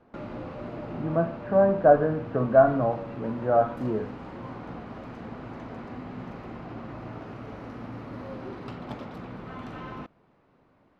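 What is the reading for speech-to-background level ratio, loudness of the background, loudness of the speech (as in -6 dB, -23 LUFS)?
16.0 dB, -39.5 LUFS, -23.5 LUFS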